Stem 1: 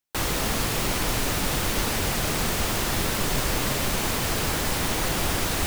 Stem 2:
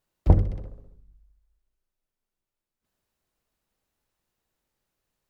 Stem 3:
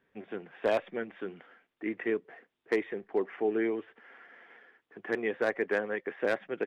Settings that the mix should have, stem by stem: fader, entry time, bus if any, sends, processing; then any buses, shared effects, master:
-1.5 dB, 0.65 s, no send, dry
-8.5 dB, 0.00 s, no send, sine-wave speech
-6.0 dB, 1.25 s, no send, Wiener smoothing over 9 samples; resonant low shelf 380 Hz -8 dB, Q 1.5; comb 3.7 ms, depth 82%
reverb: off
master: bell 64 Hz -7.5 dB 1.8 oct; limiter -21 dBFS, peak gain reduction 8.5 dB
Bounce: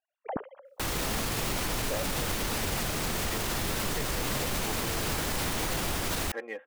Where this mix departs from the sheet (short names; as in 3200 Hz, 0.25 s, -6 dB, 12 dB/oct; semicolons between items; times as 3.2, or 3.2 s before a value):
stem 2 -8.5 dB -> -18.5 dB; master: missing bell 64 Hz -7.5 dB 1.8 oct